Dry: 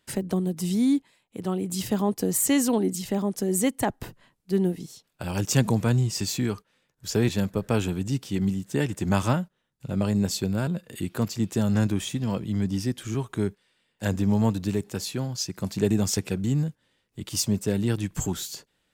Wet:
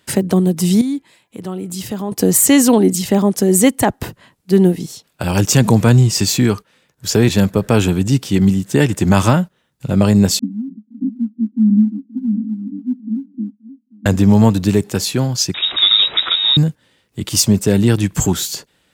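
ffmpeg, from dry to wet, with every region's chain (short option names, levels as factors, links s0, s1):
-filter_complex "[0:a]asettb=1/sr,asplit=3[s0][s1][s2];[s0]atrim=end=0.814[s3];[s1]atrim=start=0.81:end=2.12,asetpts=PTS-STARTPTS,afade=t=in:d=0.004:c=qsin,afade=t=out:st=1.306:d=0.004:c=qsin,bandreject=f=335.8:t=h:w=4,bandreject=f=671.6:t=h:w=4,bandreject=f=1007.4:t=h:w=4,bandreject=f=1343.2:t=h:w=4,bandreject=f=1679:t=h:w=4,bandreject=f=2014.8:t=h:w=4,bandreject=f=2350.6:t=h:w=4,acompressor=threshold=0.00282:ratio=1.5:attack=3.2:release=140:knee=1:detection=peak[s4];[s2]atrim=start=2.116[s5];[s3][s4]acrossfade=d=0.004:c1=hsin:c2=qsin[s6];[s6][s5]acrossfade=d=0.004:c1=qsin:c2=hsin,asettb=1/sr,asplit=3[s7][s8][s9];[s7]atrim=end=10.394[s10];[s8]atrim=start=10.39:end=14.06,asetpts=PTS-STARTPTS,afade=t=in:d=0.004:c=qsin,afade=t=out:st=3.666:d=0.004:c=qsin,asuperpass=centerf=240:order=8:qfactor=3.5,aecho=1:1:527:0.0944,atrim=end_sample=161847,aphaser=in_gain=1:out_gain=1:delay=3.1:decay=0.54:speed=1.5:type=sinusoidal[s11];[s9]atrim=start=14.056[s12];[s10][s11]acrossfade=d=0.004:c1=hsin:c2=qsin[s13];[s13][s12]acrossfade=d=0.004:c1=qsin:c2=hsin,asettb=1/sr,asplit=3[s14][s15][s16];[s14]atrim=end=15.544[s17];[s15]atrim=start=15.54:end=16.57,asetpts=PTS-STARTPTS,afade=t=in:d=0.004:c=qsin,afade=t=out:st=1.026:d=0.004:c=qsin,aeval=exprs='val(0)+0.5*0.0316*sgn(val(0))':c=same,equalizer=f=140:w=0.65:g=-5,lowpass=f=3300:t=q:w=0.5098,lowpass=f=3300:t=q:w=0.6013,lowpass=f=3300:t=q:w=0.9,lowpass=f=3300:t=q:w=2.563,afreqshift=-3900[s18];[s16]atrim=start=16.566[s19];[s17][s18]acrossfade=d=0.004:c1=hsin:c2=qsin[s20];[s20][s19]acrossfade=d=0.004:c1=qsin:c2=hsin,highpass=47,alimiter=level_in=4.73:limit=0.891:release=50:level=0:latency=1,volume=0.891"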